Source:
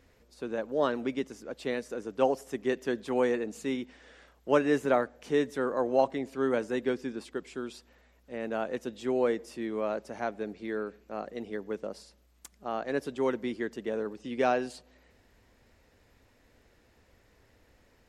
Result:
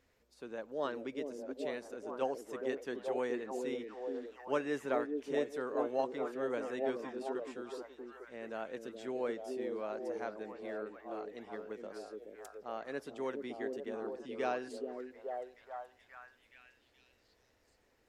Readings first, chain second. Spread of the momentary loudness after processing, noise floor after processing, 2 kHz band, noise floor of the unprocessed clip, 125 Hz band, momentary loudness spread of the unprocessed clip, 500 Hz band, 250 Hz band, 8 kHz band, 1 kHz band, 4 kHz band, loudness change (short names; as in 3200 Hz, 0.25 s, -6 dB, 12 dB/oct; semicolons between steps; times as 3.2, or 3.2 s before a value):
12 LU, -72 dBFS, -7.5 dB, -65 dBFS, -13.0 dB, 12 LU, -7.0 dB, -9.0 dB, n/a, -7.5 dB, -8.0 dB, -8.0 dB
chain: low shelf 310 Hz -6 dB; delay with a stepping band-pass 0.425 s, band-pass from 340 Hz, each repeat 0.7 oct, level -0.5 dB; gain -8 dB